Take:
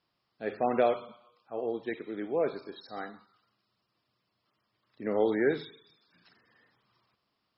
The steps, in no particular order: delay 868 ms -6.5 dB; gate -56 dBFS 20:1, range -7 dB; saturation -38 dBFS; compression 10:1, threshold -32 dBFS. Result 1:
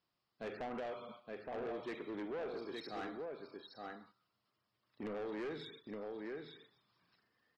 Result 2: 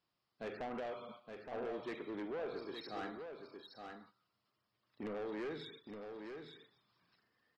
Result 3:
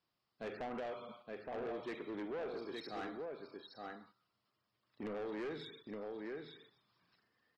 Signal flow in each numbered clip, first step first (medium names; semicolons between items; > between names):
compression > gate > delay > saturation; compression > saturation > gate > delay; gate > compression > delay > saturation